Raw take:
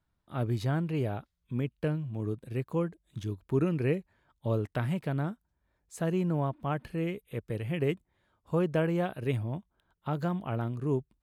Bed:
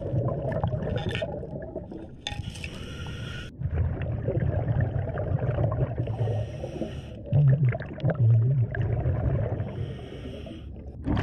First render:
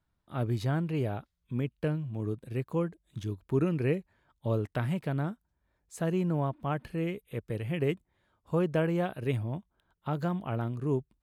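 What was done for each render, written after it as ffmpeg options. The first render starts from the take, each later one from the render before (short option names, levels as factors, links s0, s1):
-af anull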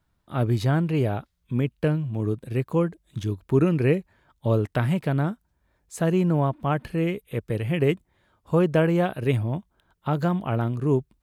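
-af "volume=2.37"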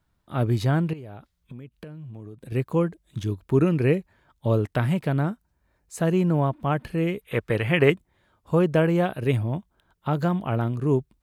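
-filter_complex "[0:a]asettb=1/sr,asplit=3[s0][s1][s2];[s0]atrim=end=0.934[s3];[s1]atrim=start=0.93:end=2.52,asetpts=PTS-STARTPTS,afade=t=in:d=0.004:c=qsin,afade=t=out:st=1.586:d=0.004:c=qsin,acompressor=threshold=0.0158:ratio=16:attack=3.2:release=140:knee=1:detection=peak[s4];[s2]atrim=start=2.516[s5];[s3][s4]acrossfade=d=0.004:c1=hsin:c2=qsin[s6];[s6][s5]acrossfade=d=0.004:c1=qsin:c2=hsin,asettb=1/sr,asplit=3[s7][s8][s9];[s7]atrim=end=5.204[s10];[s8]atrim=start=5.2:end=5.99,asetpts=PTS-STARTPTS,afade=t=in:d=0.004:c=qsin,afade=t=out:st=0.786:d=0.004:c=qsin,bandreject=f=3400:w=12[s11];[s9]atrim=start=5.986[s12];[s10][s11]acrossfade=d=0.004:c1=hsin:c2=qsin[s13];[s13][s12]acrossfade=d=0.004:c1=qsin:c2=hsin,asettb=1/sr,asplit=3[s14][s15][s16];[s14]atrim=end=7.214[s17];[s15]atrim=start=7.21:end=7.9,asetpts=PTS-STARTPTS,afade=t=in:d=0.004:c=qsin,afade=t=out:st=0.686:d=0.004:c=qsin,equalizer=f=1500:t=o:w=2.8:g=11.5[s18];[s16]atrim=start=7.896[s19];[s17][s18]acrossfade=d=0.004:c1=hsin:c2=qsin[s20];[s20][s19]acrossfade=d=0.004:c1=qsin:c2=hsin"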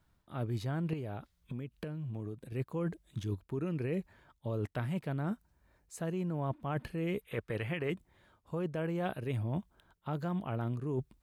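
-af "alimiter=limit=0.188:level=0:latency=1:release=148,areverse,acompressor=threshold=0.0251:ratio=10,areverse"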